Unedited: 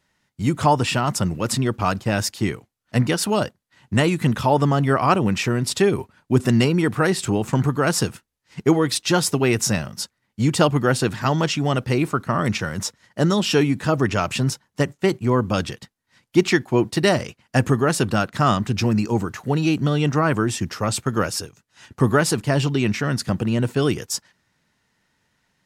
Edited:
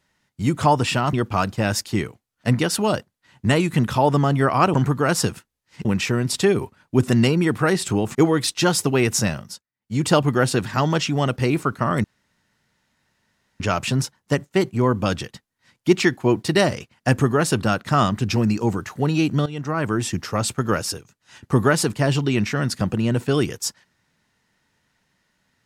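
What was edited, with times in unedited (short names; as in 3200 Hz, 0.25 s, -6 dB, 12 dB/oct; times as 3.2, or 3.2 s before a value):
1.13–1.61 cut
7.52–8.63 move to 5.22
9.83–10.55 dip -21 dB, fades 0.28 s
12.52–14.08 room tone
19.94–20.54 fade in, from -15.5 dB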